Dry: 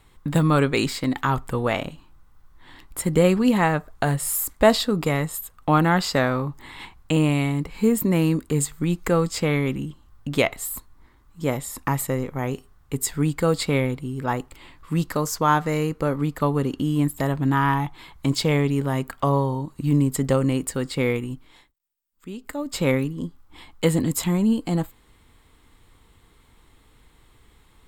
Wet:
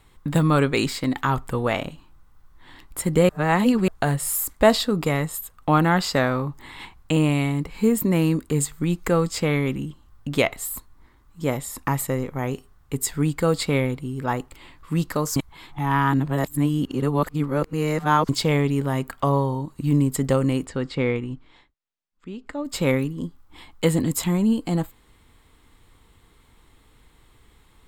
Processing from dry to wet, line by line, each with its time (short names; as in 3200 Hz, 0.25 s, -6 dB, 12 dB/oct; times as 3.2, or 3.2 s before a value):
3.29–3.88 reverse
15.36–18.29 reverse
20.66–22.65 air absorption 120 m